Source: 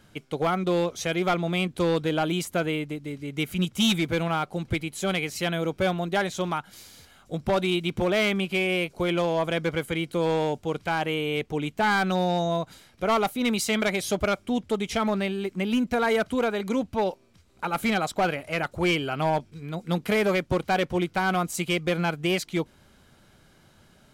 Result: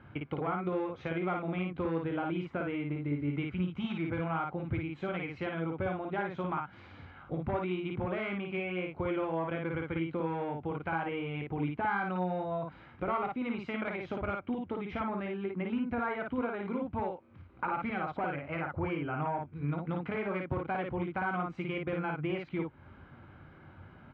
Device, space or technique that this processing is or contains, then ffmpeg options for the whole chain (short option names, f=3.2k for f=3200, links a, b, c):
bass amplifier: -filter_complex "[0:a]acompressor=threshold=-36dB:ratio=4,highpass=65,equalizer=f=88:t=q:w=4:g=5,equalizer=f=200:t=q:w=4:g=-6,equalizer=f=440:t=q:w=4:g=-6,equalizer=f=640:t=q:w=4:g=-6,equalizer=f=1.8k:t=q:w=4:g=-5,lowpass=f=2.1k:w=0.5412,lowpass=f=2.1k:w=1.3066,asettb=1/sr,asplit=3[a][b][c];[a]atrim=end=18.554[d];[b]atrim=start=18.55:end=19.53,asetpts=PTS-STARTPTS,afade=t=in:d=0.004:c=qsin,afade=t=out:st=0.976:d=0.004:c=qsin,equalizer=f=3.6k:t=o:w=1.1:g=-5.5[e];[c]atrim=start=19.526[f];[d][e]acrossfade=d=0.004:c1=hsin:c2=qsin[g];[g][f]acrossfade=d=0.004:c1=qsin:c2=hsin,aecho=1:1:21|55:0.266|0.708,volume=4.5dB"